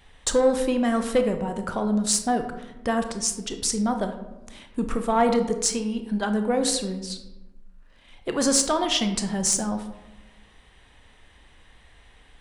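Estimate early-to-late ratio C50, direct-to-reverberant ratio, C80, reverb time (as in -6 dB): 9.0 dB, 6.5 dB, 11.5 dB, 1.0 s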